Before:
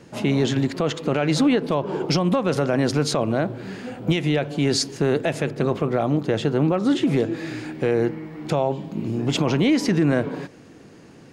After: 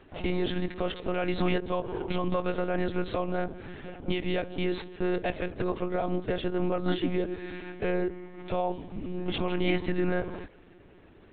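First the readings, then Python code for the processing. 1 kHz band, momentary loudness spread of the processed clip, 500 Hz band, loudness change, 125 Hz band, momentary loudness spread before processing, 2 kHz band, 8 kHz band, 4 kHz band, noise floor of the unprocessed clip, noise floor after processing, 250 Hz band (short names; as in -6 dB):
-6.0 dB, 9 LU, -7.5 dB, -9.0 dB, -11.5 dB, 9 LU, -6.5 dB, under -40 dB, -10.0 dB, -47 dBFS, -54 dBFS, -10.0 dB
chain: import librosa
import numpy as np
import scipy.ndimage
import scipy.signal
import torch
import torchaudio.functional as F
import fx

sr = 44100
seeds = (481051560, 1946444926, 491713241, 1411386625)

y = fx.tracing_dist(x, sr, depth_ms=0.021)
y = fx.low_shelf(y, sr, hz=180.0, db=-4.0)
y = fx.lpc_monotone(y, sr, seeds[0], pitch_hz=180.0, order=16)
y = y * librosa.db_to_amplitude(-6.5)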